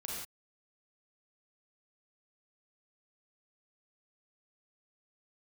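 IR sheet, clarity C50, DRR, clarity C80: −1.5 dB, −4.0 dB, 1.5 dB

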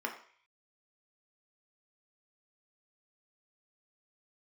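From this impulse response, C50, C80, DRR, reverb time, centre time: 9.0 dB, 12.0 dB, 1.0 dB, 0.50 s, 18 ms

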